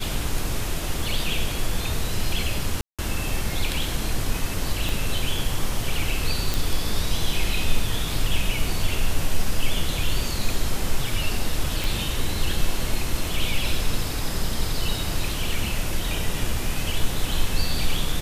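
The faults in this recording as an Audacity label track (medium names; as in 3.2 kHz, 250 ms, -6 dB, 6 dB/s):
2.810000	2.990000	dropout 176 ms
4.890000	4.890000	pop
6.540000	6.540000	pop
11.840000	11.840000	pop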